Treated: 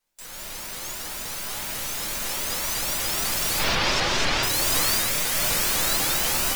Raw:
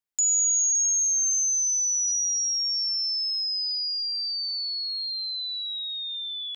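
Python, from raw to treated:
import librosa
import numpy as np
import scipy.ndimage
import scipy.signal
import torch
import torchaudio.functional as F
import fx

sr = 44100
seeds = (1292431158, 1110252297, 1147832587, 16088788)

p1 = fx.spec_flatten(x, sr, power=0.13)
p2 = fx.lowpass(p1, sr, hz=5300.0, slope=24, at=(3.58, 4.43))
p3 = fx.dereverb_blind(p2, sr, rt60_s=0.87)
p4 = fx.comb(p3, sr, ms=7.3, depth=0.99, at=(4.99, 5.4))
p5 = fx.over_compress(p4, sr, threshold_db=-34.0, ratio=-0.5)
p6 = np.clip(p5, -10.0 ** (-29.5 / 20.0), 10.0 ** (-29.5 / 20.0))
p7 = p6 + fx.room_flutter(p6, sr, wall_m=8.2, rt60_s=0.49, dry=0)
p8 = fx.room_shoebox(p7, sr, seeds[0], volume_m3=190.0, walls='furnished', distance_m=5.4)
y = fx.vibrato_shape(p8, sr, shape='saw_up', rate_hz=4.0, depth_cents=250.0)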